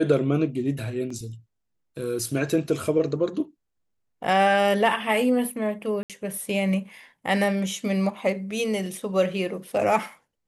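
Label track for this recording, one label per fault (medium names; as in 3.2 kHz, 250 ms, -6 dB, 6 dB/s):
1.100000	1.100000	dropout 4.3 ms
6.030000	6.100000	dropout 67 ms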